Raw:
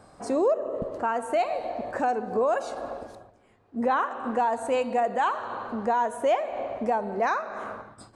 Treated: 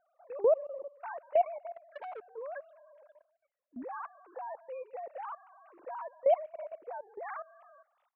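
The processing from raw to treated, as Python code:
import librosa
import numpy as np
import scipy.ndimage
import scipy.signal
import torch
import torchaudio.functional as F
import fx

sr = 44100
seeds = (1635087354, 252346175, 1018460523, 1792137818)

y = fx.sine_speech(x, sr)
y = fx.level_steps(y, sr, step_db=18)
y = fx.transformer_sat(y, sr, knee_hz=900.0, at=(1.75, 2.22))
y = F.gain(torch.from_numpy(y), -4.0).numpy()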